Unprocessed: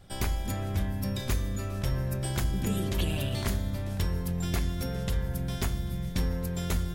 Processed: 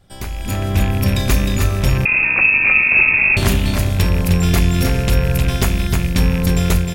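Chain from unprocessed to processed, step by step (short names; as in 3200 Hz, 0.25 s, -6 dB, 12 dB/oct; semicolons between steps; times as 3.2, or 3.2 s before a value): rattling part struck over -29 dBFS, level -30 dBFS; AGC gain up to 14 dB; on a send: echo 0.309 s -4.5 dB; 2.05–3.37 on the sum: inverted band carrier 2600 Hz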